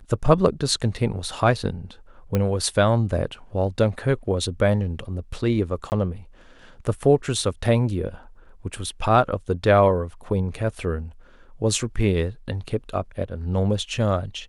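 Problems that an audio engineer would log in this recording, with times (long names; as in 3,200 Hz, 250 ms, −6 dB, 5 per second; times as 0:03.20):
0:02.35: click −10 dBFS
0:05.90–0:05.92: drop-out 19 ms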